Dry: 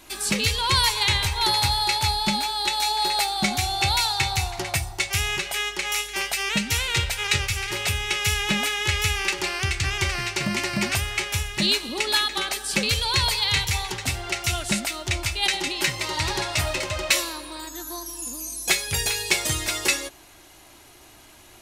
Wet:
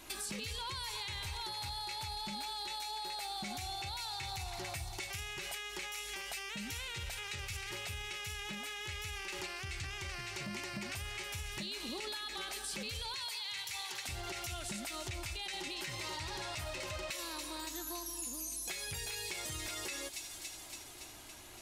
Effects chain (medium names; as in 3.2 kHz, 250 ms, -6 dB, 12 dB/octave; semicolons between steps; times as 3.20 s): 13.14–14.09 s: high-pass 1.1 kHz 6 dB/octave; feedback echo behind a high-pass 282 ms, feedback 67%, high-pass 3.6 kHz, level -14 dB; peak limiter -21 dBFS, peak gain reduction 11.5 dB; compression 4:1, threshold -35 dBFS, peak gain reduction 8.5 dB; trim -4 dB